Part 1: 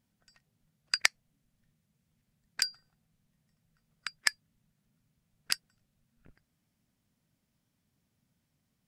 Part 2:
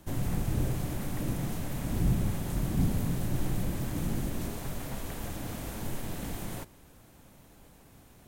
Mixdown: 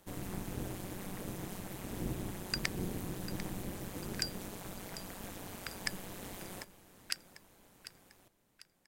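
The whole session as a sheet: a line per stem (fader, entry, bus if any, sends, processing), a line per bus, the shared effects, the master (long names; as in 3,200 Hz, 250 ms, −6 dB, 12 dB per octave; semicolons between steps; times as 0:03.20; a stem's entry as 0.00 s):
−6.5 dB, 1.60 s, no send, echo send −13 dB, brickwall limiter −8 dBFS, peak gain reduction 4.5 dB
−1.0 dB, 0.00 s, no send, echo send −17 dB, amplitude modulation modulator 190 Hz, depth 80%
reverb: not used
echo: repeating echo 746 ms, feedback 44%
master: low-shelf EQ 270 Hz −9.5 dB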